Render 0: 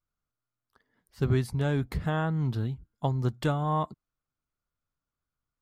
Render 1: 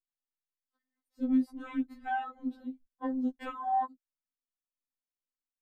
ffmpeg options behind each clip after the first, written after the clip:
-af "afwtdn=0.0141,afftfilt=real='re*3.46*eq(mod(b,12),0)':imag='im*3.46*eq(mod(b,12),0)':win_size=2048:overlap=0.75"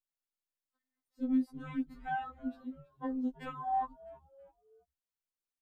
-filter_complex "[0:a]asplit=4[s0][s1][s2][s3];[s1]adelay=327,afreqshift=-110,volume=0.106[s4];[s2]adelay=654,afreqshift=-220,volume=0.0479[s5];[s3]adelay=981,afreqshift=-330,volume=0.0214[s6];[s0][s4][s5][s6]amix=inputs=4:normalize=0,volume=0.708"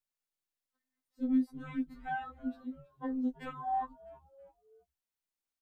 -filter_complex "[0:a]asplit=2[s0][s1];[s1]adelay=16,volume=0.224[s2];[s0][s2]amix=inputs=2:normalize=0"

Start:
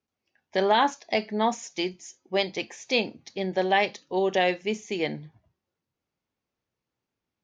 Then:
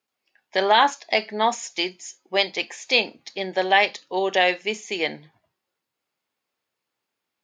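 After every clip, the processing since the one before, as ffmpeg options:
-af "highpass=f=830:p=1,bandreject=f=5900:w=10,volume=2.37"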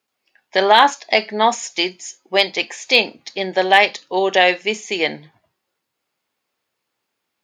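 -af "asoftclip=type=hard:threshold=0.473,volume=1.88"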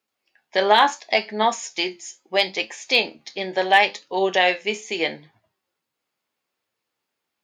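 -af "flanger=delay=8.8:depth=6:regen=63:speed=0.74:shape=triangular"

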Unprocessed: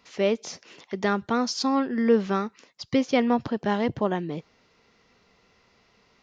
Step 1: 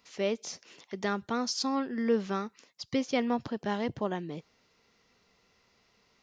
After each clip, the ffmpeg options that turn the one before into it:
-af "highshelf=f=5300:g=9,volume=0.447"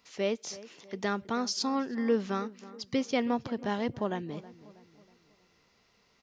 -filter_complex "[0:a]asplit=2[s0][s1];[s1]adelay=321,lowpass=f=1800:p=1,volume=0.141,asplit=2[s2][s3];[s3]adelay=321,lowpass=f=1800:p=1,volume=0.47,asplit=2[s4][s5];[s5]adelay=321,lowpass=f=1800:p=1,volume=0.47,asplit=2[s6][s7];[s7]adelay=321,lowpass=f=1800:p=1,volume=0.47[s8];[s0][s2][s4][s6][s8]amix=inputs=5:normalize=0"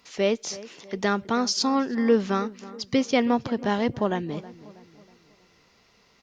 -af "volume=2.24" -ar 48000 -c:a libopus -b:a 64k

